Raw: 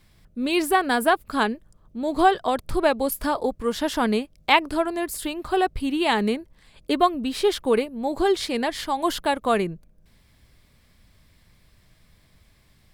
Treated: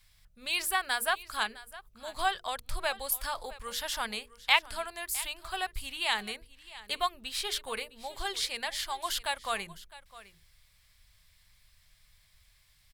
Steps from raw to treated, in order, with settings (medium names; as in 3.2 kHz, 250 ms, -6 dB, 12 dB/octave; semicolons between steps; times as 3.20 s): amplifier tone stack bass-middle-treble 10-0-10; hum notches 60/120/180/240/300/360/420/480 Hz; delay 659 ms -18 dB